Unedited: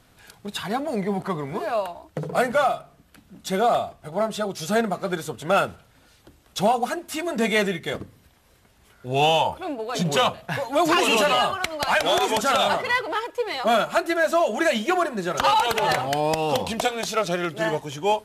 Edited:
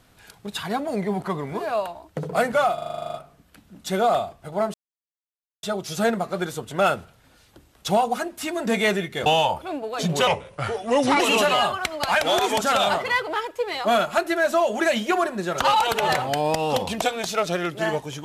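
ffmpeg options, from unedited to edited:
-filter_complex "[0:a]asplit=15[s0][s1][s2][s3][s4][s5][s6][s7][s8][s9][s10][s11][s12][s13][s14];[s0]atrim=end=2.782[s15];[s1]atrim=start=2.738:end=2.782[s16];[s2]atrim=start=2.738:end=2.782[s17];[s3]atrim=start=2.738:end=2.782[s18];[s4]atrim=start=2.738:end=2.782[s19];[s5]atrim=start=2.738:end=2.782[s20];[s6]atrim=start=2.738:end=2.782[s21];[s7]atrim=start=2.738:end=2.782[s22];[s8]atrim=start=2.738:end=2.782[s23];[s9]atrim=start=2.738:end=2.782[s24];[s10]atrim=start=2.738:end=4.34,asetpts=PTS-STARTPTS,afade=t=out:st=1.598:d=0.004:c=hsin,apad=pad_dur=0.89[s25];[s11]atrim=start=4.34:end=7.972,asetpts=PTS-STARTPTS,afade=t=in:d=0.004:c=hsin[s26];[s12]atrim=start=9.218:end=10.234[s27];[s13]atrim=start=10.23:end=10.99,asetpts=PTS-STARTPTS,asetrate=36162,aresample=44100,atrim=end_sample=40873,asetpts=PTS-STARTPTS[s28];[s14]atrim=start=10.986[s29];[s15][s16]acrossfade=d=0.004:c1=hsin:c2=hsin[s30];[s30][s17]acrossfade=d=0.004:c1=hsin:c2=hsin[s31];[s31][s18]acrossfade=d=0.004:c1=hsin:c2=hsin[s32];[s32][s19]acrossfade=d=0.004:c1=hsin:c2=hsin[s33];[s33][s20]acrossfade=d=0.004:c1=hsin:c2=hsin[s34];[s34][s21]acrossfade=d=0.004:c1=hsin:c2=hsin[s35];[s35][s22]acrossfade=d=0.004:c1=hsin:c2=hsin[s36];[s36][s23]acrossfade=d=0.004:c1=hsin:c2=hsin[s37];[s37][s24]acrossfade=d=0.004:c1=hsin:c2=hsin[s38];[s25][s26]concat=n=2:v=0:a=1[s39];[s38][s39]acrossfade=d=0.004:c1=hsin:c2=hsin[s40];[s40][s27]acrossfade=d=0.004:c1=hsin:c2=hsin[s41];[s41][s28]acrossfade=d=0.004:c1=hsin:c2=hsin[s42];[s42][s29]acrossfade=d=0.004:c1=hsin:c2=hsin"

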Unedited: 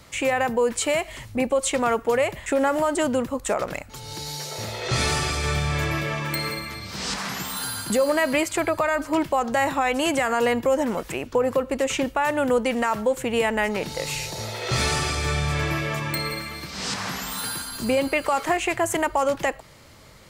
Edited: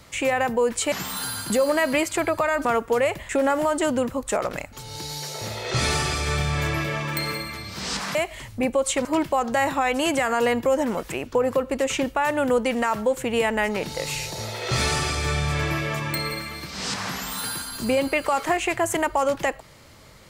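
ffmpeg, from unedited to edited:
-filter_complex "[0:a]asplit=5[s0][s1][s2][s3][s4];[s0]atrim=end=0.922[s5];[s1]atrim=start=7.318:end=9.052[s6];[s2]atrim=start=1.818:end=7.322[s7];[s3]atrim=start=0.918:end=1.822[s8];[s4]atrim=start=9.048[s9];[s5][s6]acrossfade=d=0.004:c1=hsin:c2=hsin[s10];[s10][s7]acrossfade=d=0.004:c1=hsin:c2=hsin[s11];[s11][s8]acrossfade=d=0.004:c1=hsin:c2=hsin[s12];[s12][s9]acrossfade=d=0.004:c1=hsin:c2=hsin"

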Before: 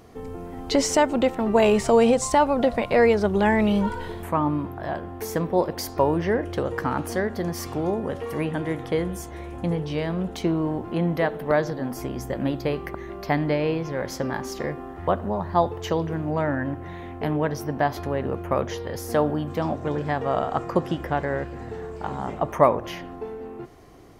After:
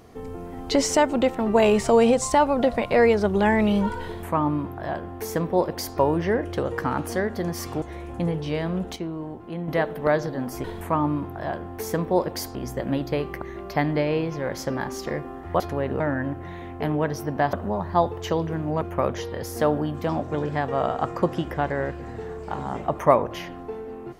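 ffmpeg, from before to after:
-filter_complex "[0:a]asplit=10[s0][s1][s2][s3][s4][s5][s6][s7][s8][s9];[s0]atrim=end=7.822[s10];[s1]atrim=start=9.258:end=10.402[s11];[s2]atrim=start=10.398:end=11.122,asetpts=PTS-STARTPTS,volume=0.398[s12];[s3]atrim=start=11.118:end=12.082[s13];[s4]atrim=start=4.058:end=5.972[s14];[s5]atrim=start=12.078:end=15.132[s15];[s6]atrim=start=17.938:end=18.342[s16];[s7]atrim=start=16.408:end=17.942[s17];[s8]atrim=start=15.128:end=16.412[s18];[s9]atrim=start=18.338[s19];[s10][s11]acrossfade=d=0.004:c1=hsin:c2=hsin[s20];[s20][s12]acrossfade=d=0.004:c1=hsin:c2=hsin[s21];[s21][s13]acrossfade=d=0.004:c1=hsin:c2=hsin[s22];[s22][s14]acrossfade=d=0.004:c1=hsin:c2=hsin[s23];[s23][s15]acrossfade=d=0.004:c1=hsin:c2=hsin[s24];[s24][s16]acrossfade=d=0.004:c1=hsin:c2=hsin[s25];[s25][s17]acrossfade=d=0.004:c1=hsin:c2=hsin[s26];[s26][s18]acrossfade=d=0.004:c1=hsin:c2=hsin[s27];[s27][s19]acrossfade=d=0.004:c1=hsin:c2=hsin"

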